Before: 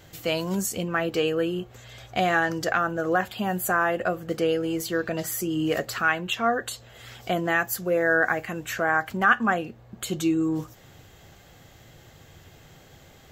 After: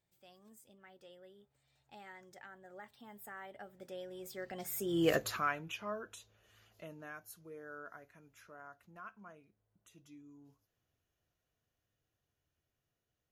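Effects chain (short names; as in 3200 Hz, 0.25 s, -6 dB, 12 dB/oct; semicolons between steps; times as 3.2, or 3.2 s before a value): Doppler pass-by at 5.1, 39 m/s, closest 6.1 m; high shelf 8100 Hz +4 dB; gain -4 dB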